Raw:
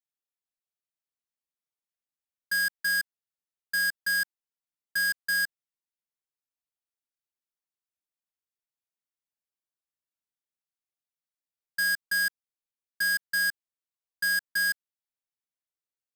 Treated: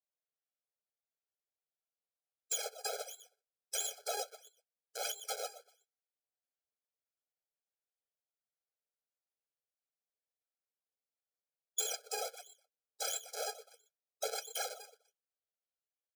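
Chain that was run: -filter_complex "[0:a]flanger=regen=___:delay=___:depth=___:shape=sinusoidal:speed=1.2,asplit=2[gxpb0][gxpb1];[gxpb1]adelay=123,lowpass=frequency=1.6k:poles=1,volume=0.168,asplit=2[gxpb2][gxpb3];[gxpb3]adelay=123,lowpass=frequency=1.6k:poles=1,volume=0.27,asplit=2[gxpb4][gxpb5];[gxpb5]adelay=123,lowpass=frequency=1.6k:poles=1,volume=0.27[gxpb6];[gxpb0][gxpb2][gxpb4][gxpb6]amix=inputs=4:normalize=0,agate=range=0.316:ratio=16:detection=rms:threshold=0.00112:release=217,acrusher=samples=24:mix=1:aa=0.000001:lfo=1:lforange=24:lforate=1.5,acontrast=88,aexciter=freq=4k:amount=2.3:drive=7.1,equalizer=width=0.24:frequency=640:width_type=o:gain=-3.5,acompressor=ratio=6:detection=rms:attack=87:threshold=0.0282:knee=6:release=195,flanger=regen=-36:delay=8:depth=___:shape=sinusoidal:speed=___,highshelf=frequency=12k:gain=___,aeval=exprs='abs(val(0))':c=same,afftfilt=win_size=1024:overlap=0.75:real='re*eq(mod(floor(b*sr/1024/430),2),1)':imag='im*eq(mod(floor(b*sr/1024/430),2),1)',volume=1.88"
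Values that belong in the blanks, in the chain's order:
-27, 9.5, 6, 5.5, 0.41, -12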